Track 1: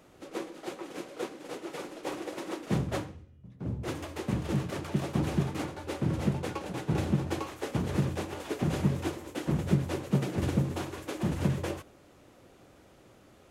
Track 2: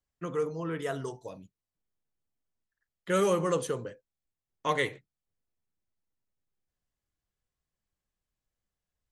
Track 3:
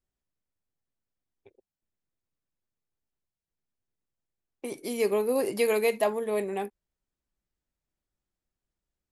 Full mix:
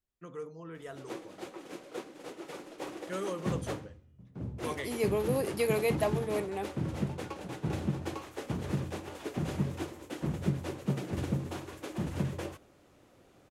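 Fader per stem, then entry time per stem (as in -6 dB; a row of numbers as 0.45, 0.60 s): -4.5, -11.0, -4.5 dB; 0.75, 0.00, 0.00 s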